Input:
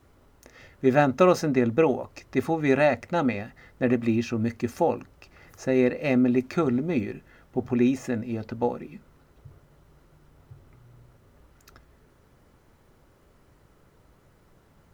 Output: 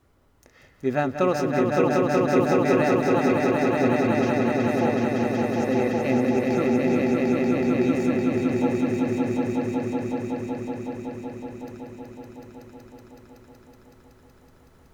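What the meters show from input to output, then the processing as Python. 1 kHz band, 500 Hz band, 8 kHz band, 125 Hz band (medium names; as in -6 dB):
+3.5 dB, +3.0 dB, no reading, +3.0 dB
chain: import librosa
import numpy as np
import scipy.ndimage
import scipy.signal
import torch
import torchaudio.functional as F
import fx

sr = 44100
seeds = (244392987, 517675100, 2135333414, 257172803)

y = fx.echo_swell(x, sr, ms=187, loudest=5, wet_db=-3.5)
y = y * librosa.db_to_amplitude(-4.0)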